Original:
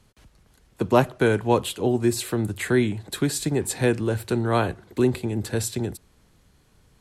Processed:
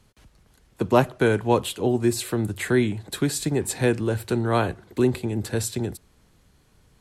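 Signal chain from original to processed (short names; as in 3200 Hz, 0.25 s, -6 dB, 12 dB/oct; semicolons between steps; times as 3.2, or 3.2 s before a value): AAC 128 kbps 48000 Hz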